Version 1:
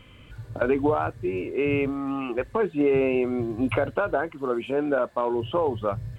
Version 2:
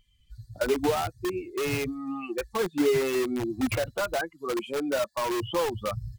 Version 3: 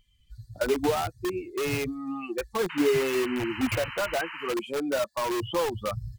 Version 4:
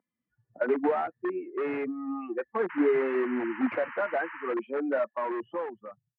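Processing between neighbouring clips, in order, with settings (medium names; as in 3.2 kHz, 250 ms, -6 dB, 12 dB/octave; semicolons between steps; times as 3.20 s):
expander on every frequency bin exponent 2; in parallel at -4.5 dB: integer overflow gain 26.5 dB
painted sound noise, 2.69–4.54 s, 850–3100 Hz -39 dBFS
fade out at the end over 1.13 s; Chebyshev band-pass 230–1900 Hz, order 3; level-controlled noise filter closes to 1.2 kHz, open at -23 dBFS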